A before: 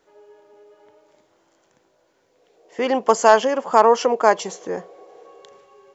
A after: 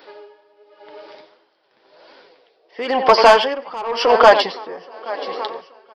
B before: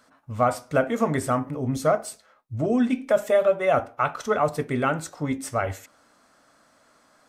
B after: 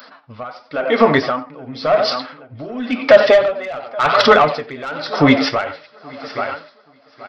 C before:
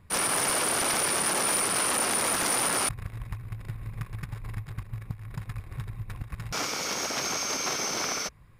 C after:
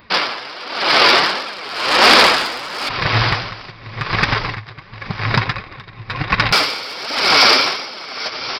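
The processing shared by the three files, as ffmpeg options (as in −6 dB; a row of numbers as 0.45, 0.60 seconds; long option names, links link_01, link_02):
-filter_complex "[0:a]dynaudnorm=framelen=280:gausssize=13:maxgain=15.5dB,asplit=2[link_01][link_02];[link_02]adelay=90,highpass=300,lowpass=3400,asoftclip=type=hard:threshold=-10dB,volume=-14dB[link_03];[link_01][link_03]amix=inputs=2:normalize=0,aresample=11025,aresample=44100,flanger=delay=3.1:depth=6:regen=40:speed=1.4:shape=triangular,lowshelf=frequency=200:gain=-6,asplit=2[link_04][link_05];[link_05]acompressor=threshold=-29dB:ratio=5,volume=3dB[link_06];[link_04][link_06]amix=inputs=2:normalize=0,aemphasis=mode=production:type=bsi,asplit=2[link_07][link_08];[link_08]aecho=0:1:826|1652|2478|3304:0.126|0.0567|0.0255|0.0115[link_09];[link_07][link_09]amix=inputs=2:normalize=0,asoftclip=type=tanh:threshold=-12dB,alimiter=level_in=15dB:limit=-1dB:release=50:level=0:latency=1,aeval=exprs='val(0)*pow(10,-21*(0.5-0.5*cos(2*PI*0.94*n/s))/20)':channel_layout=same"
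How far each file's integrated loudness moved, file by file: +3.0, +8.5, +11.5 LU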